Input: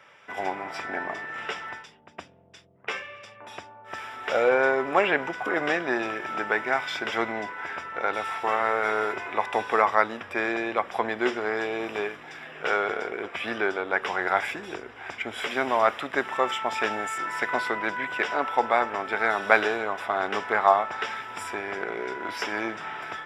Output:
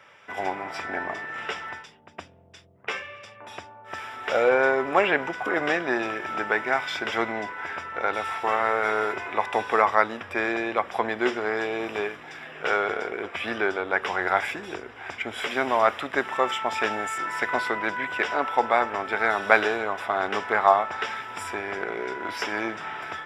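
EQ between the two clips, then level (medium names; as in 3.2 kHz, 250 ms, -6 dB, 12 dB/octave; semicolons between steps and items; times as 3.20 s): peaking EQ 87 Hz +7 dB 0.29 oct; +1.0 dB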